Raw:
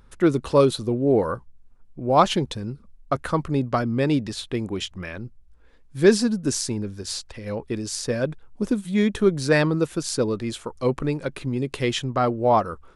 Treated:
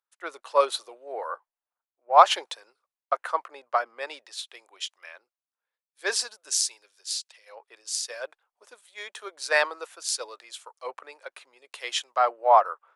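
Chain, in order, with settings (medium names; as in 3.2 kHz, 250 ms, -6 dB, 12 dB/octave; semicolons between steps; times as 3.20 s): inverse Chebyshev high-pass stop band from 190 Hz, stop band 60 dB; three bands expanded up and down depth 70%; trim -2.5 dB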